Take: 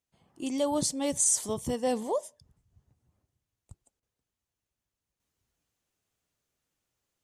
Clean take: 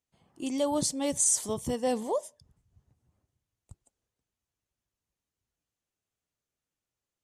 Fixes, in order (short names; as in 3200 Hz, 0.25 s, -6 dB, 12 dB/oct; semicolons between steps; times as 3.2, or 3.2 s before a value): interpolate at 4, 25 ms; gain correction -6.5 dB, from 5.2